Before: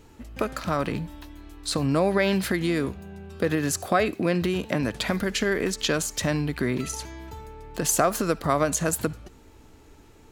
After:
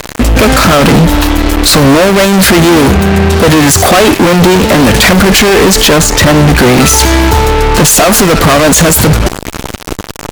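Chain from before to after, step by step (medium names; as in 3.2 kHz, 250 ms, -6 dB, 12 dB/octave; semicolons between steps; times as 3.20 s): 5.87–6.50 s: low-pass 1.8 kHz 6 dB/octave; fuzz box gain 45 dB, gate -46 dBFS; loudness maximiser +21 dB; trim -1 dB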